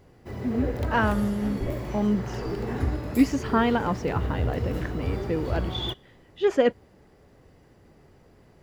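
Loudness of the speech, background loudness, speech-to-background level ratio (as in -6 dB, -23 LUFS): -27.5 LUFS, -32.0 LUFS, 4.5 dB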